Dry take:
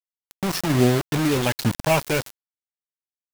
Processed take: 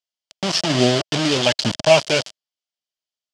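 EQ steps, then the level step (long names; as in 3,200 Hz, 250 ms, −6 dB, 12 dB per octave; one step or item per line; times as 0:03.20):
loudspeaker in its box 120–6,900 Hz, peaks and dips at 630 Hz +9 dB, 3,100 Hz +9 dB, 4,800 Hz +6 dB
high-shelf EQ 3,800 Hz +9.5 dB
0.0 dB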